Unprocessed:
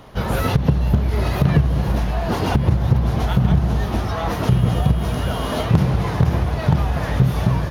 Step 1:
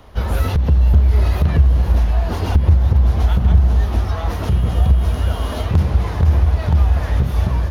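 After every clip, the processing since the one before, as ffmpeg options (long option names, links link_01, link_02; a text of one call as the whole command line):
ffmpeg -i in.wav -filter_complex "[0:a]acrossover=split=340|3000[link_01][link_02][link_03];[link_02]acompressor=threshold=-22dB:ratio=6[link_04];[link_01][link_04][link_03]amix=inputs=3:normalize=0,lowshelf=frequency=100:width_type=q:width=3:gain=6.5,volume=-2.5dB" out.wav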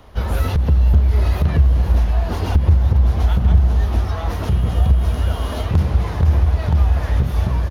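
ffmpeg -i in.wav -af "aecho=1:1:277:0.1,volume=-1dB" out.wav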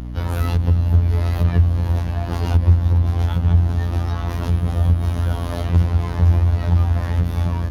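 ffmpeg -i in.wav -af "afftfilt=real='hypot(re,im)*cos(PI*b)':imag='0':win_size=2048:overlap=0.75,aeval=exprs='val(0)+0.0355*(sin(2*PI*60*n/s)+sin(2*PI*2*60*n/s)/2+sin(2*PI*3*60*n/s)/3+sin(2*PI*4*60*n/s)/4+sin(2*PI*5*60*n/s)/5)':channel_layout=same,volume=1.5dB" out.wav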